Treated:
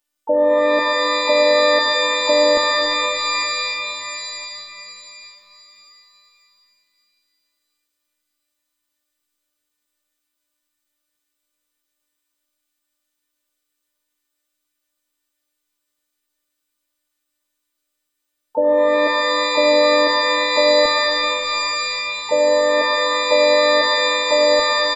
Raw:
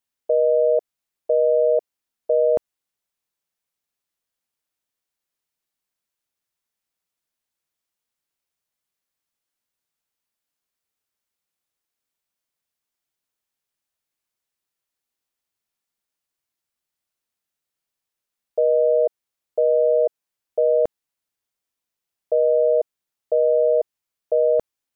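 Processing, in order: robot voice 298 Hz; peak limiter -18 dBFS, peak gain reduction 6 dB; hum notches 60/120/180/240 Hz; harmony voices -12 st -17 dB, -3 st -7 dB, +7 st -11 dB; pitch-shifted reverb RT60 3.6 s, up +12 st, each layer -2 dB, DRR 3 dB; trim +6.5 dB

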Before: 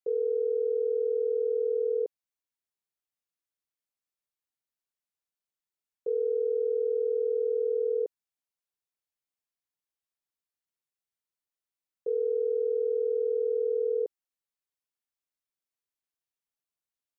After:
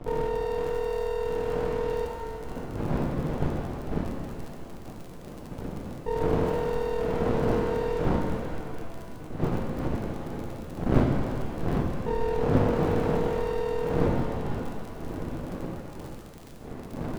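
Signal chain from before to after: wind noise 290 Hz -32 dBFS; crackle 91 per s -37 dBFS; half-wave rectifier; pitch-shifted reverb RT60 2.2 s, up +7 st, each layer -8 dB, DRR 1 dB; trim +3 dB

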